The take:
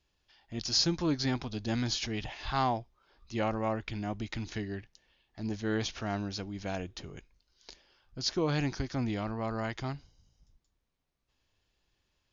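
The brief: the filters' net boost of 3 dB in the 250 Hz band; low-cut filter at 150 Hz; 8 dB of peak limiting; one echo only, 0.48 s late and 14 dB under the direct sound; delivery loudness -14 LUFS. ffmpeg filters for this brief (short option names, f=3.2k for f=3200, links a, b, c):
-af "highpass=150,equalizer=f=250:t=o:g=4.5,alimiter=limit=-22.5dB:level=0:latency=1,aecho=1:1:480:0.2,volume=21dB"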